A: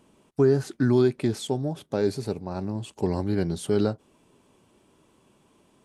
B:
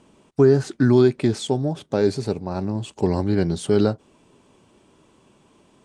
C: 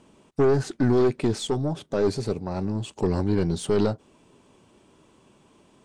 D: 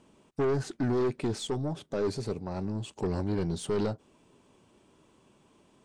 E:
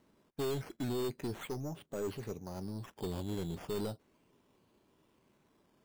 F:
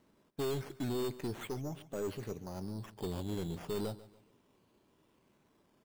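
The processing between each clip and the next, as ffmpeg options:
-af "lowpass=f=9k:w=0.5412,lowpass=f=9k:w=1.3066,volume=5dB"
-af "aeval=exprs='(tanh(5.62*val(0)+0.35)-tanh(0.35))/5.62':c=same"
-af "asoftclip=type=tanh:threshold=-16.5dB,volume=-5dB"
-af "acrusher=samples=9:mix=1:aa=0.000001:lfo=1:lforange=5.4:lforate=0.37,volume=-8dB"
-af "aecho=1:1:142|284|426:0.133|0.0467|0.0163"

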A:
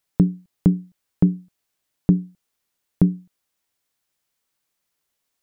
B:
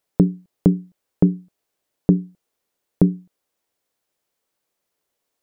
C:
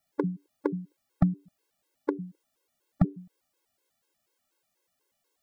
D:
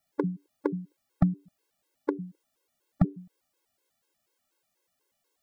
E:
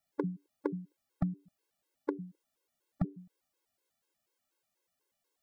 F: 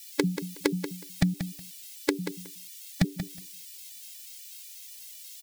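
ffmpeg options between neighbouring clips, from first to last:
-af "equalizer=f=480:t=o:w=1.8:g=9.5,volume=-2dB"
-af "acompressor=threshold=-22dB:ratio=6,afftfilt=real='re*gt(sin(2*PI*4.1*pts/sr)*(1-2*mod(floor(b*sr/1024/280),2)),0)':imag='im*gt(sin(2*PI*4.1*pts/sr)*(1-2*mod(floor(b*sr/1024/280),2)),0)':win_size=1024:overlap=0.75,volume=3.5dB"
-af anull
-af "alimiter=limit=-11dB:level=0:latency=1:release=191,volume=-5.5dB"
-af "aexciter=amount=12.9:drive=9:freq=2k,asoftclip=type=hard:threshold=-19dB,aecho=1:1:184|368:0.316|0.0474,volume=8dB"

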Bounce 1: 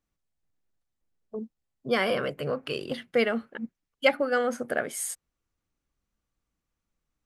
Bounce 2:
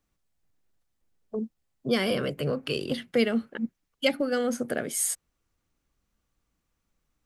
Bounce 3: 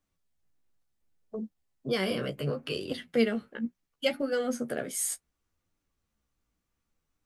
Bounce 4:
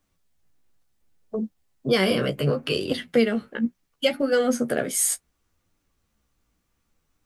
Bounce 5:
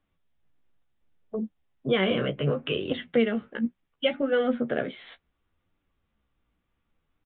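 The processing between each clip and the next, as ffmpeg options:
-filter_complex "[0:a]acrossover=split=400|3000[a][b][c];[b]acompressor=threshold=-44dB:ratio=2.5[d];[a][d][c]amix=inputs=3:normalize=0,volume=5.5dB"
-af "flanger=delay=10:depth=7.2:regen=22:speed=0.69:shape=triangular"
-af "alimiter=limit=-17.5dB:level=0:latency=1:release=278,volume=8.5dB"
-af "aresample=8000,aresample=44100,volume=-3dB"

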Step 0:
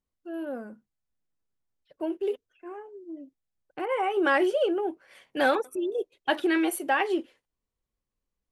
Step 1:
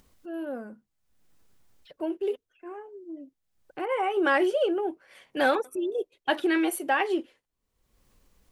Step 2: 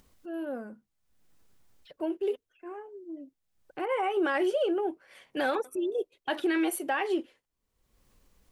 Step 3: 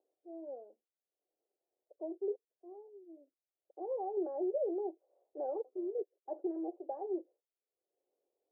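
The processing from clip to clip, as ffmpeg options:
-af "acompressor=mode=upward:threshold=-43dB:ratio=2.5"
-af "alimiter=limit=-19dB:level=0:latency=1:release=57,volume=-1dB"
-af "aeval=exprs='0.106*(cos(1*acos(clip(val(0)/0.106,-1,1)))-cos(1*PI/2))+0.00335*(cos(7*acos(clip(val(0)/0.106,-1,1)))-cos(7*PI/2))+0.00133*(cos(8*acos(clip(val(0)/0.106,-1,1)))-cos(8*PI/2))':c=same,asuperpass=centerf=510:order=8:qfactor=1.2,volume=-6.5dB"

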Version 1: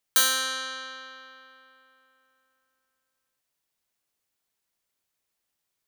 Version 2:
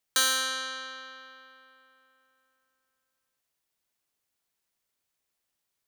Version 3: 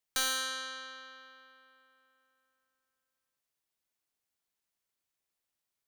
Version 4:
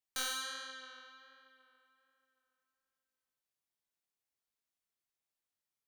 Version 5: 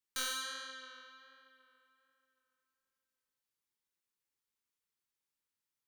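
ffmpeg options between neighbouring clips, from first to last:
-filter_complex "[0:a]acrossover=split=9300[a][b];[b]acompressor=threshold=-30dB:ratio=4:attack=1:release=60[c];[a][c]amix=inputs=2:normalize=0,volume=-1dB"
-af "aeval=exprs='clip(val(0),-1,0.0708)':c=same,volume=-5.5dB"
-af "flanger=delay=18.5:depth=7.5:speed=1.3,volume=-3dB"
-af "asuperstop=centerf=670:order=12:qfactor=2.7"

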